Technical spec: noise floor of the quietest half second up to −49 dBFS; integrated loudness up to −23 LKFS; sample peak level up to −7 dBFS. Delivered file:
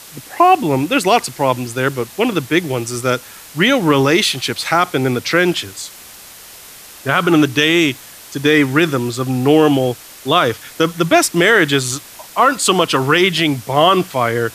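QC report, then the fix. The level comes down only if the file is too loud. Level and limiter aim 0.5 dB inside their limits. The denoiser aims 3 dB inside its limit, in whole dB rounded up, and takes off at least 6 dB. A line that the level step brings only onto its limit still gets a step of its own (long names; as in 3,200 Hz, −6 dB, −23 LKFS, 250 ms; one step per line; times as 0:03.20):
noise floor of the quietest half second −38 dBFS: out of spec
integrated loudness −15.0 LKFS: out of spec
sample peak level −1.0 dBFS: out of spec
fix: broadband denoise 6 dB, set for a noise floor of −38 dBFS
level −8.5 dB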